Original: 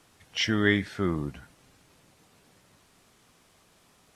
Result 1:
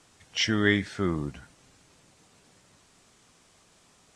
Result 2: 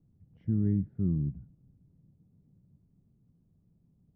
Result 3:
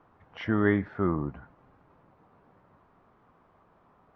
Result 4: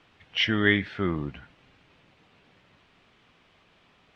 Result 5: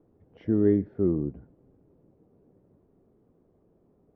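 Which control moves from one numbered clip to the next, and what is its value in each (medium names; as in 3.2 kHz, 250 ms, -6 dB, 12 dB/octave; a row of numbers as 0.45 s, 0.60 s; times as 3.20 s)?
resonant low-pass, frequency: 7.9 kHz, 160 Hz, 1.1 kHz, 2.9 kHz, 410 Hz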